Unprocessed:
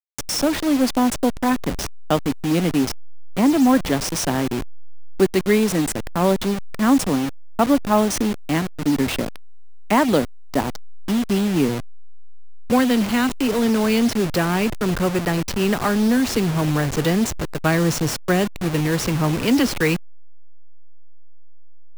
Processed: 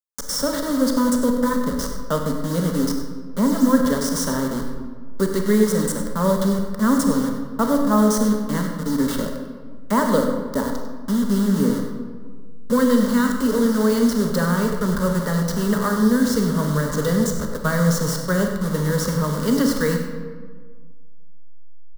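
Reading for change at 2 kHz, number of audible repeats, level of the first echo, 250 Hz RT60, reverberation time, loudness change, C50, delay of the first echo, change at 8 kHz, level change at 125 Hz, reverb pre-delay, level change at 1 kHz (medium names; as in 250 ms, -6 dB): -3.0 dB, 1, -12.0 dB, 1.8 s, 1.6 s, -0.5 dB, 4.0 dB, 98 ms, 0.0 dB, +0.5 dB, 30 ms, -2.0 dB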